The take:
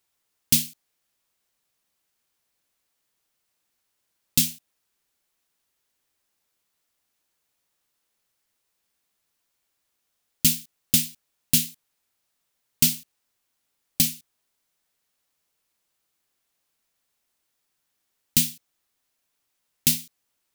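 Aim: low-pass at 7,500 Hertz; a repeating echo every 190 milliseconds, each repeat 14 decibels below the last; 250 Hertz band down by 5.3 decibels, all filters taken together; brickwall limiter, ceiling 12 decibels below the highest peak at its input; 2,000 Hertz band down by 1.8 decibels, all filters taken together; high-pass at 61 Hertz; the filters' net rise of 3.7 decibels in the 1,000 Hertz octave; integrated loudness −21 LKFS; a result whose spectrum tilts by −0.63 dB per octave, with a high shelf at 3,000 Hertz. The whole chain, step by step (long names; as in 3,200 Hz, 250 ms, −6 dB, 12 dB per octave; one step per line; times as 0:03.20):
high-pass filter 61 Hz
low-pass filter 7,500 Hz
parametric band 250 Hz −7 dB
parametric band 1,000 Hz +7 dB
parametric band 2,000 Hz −8.5 dB
high-shelf EQ 3,000 Hz +8 dB
brickwall limiter −14.5 dBFS
repeating echo 190 ms, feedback 20%, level −14 dB
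level +9.5 dB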